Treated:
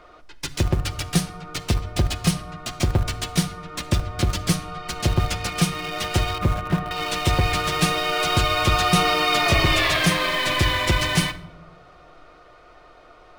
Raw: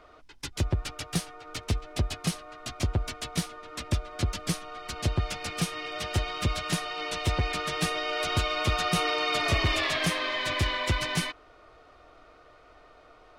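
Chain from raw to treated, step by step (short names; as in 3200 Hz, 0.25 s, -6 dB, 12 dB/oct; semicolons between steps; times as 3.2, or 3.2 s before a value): 6.38–6.91 LPF 1500 Hz 12 dB/oct; in parallel at -11.5 dB: bit-crush 5-bit; on the sum: shoebox room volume 2700 m³, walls furnished, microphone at 0.9 m; gain +5 dB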